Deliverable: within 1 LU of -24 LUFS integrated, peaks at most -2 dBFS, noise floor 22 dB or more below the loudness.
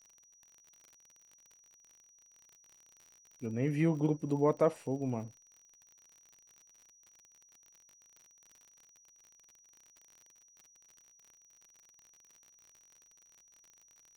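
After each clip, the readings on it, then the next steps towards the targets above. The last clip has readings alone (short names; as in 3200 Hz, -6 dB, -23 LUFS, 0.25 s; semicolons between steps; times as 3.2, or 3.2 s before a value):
ticks 51/s; steady tone 5800 Hz; tone level -61 dBFS; loudness -33.0 LUFS; peak -15.0 dBFS; loudness target -24.0 LUFS
-> de-click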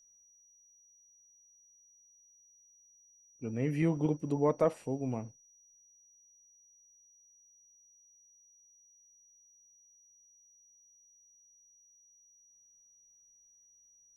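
ticks 0/s; steady tone 5800 Hz; tone level -61 dBFS
-> notch 5800 Hz, Q 30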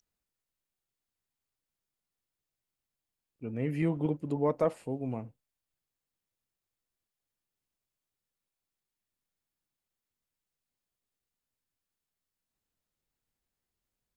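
steady tone none; loudness -32.5 LUFS; peak -15.0 dBFS; loudness target -24.0 LUFS
-> gain +8.5 dB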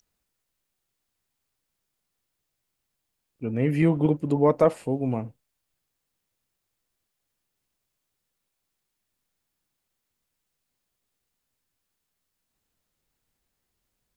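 loudness -24.0 LUFS; peak -6.5 dBFS; noise floor -81 dBFS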